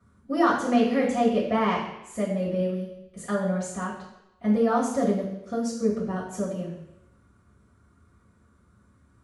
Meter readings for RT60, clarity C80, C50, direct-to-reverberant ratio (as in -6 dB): 0.85 s, 7.0 dB, 4.0 dB, -9.0 dB